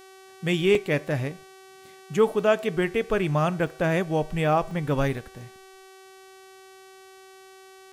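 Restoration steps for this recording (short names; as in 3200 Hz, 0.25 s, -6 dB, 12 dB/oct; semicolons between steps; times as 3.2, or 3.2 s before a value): de-hum 381.3 Hz, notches 34; interpolate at 0.75/3.67/4.71/5.17, 2.1 ms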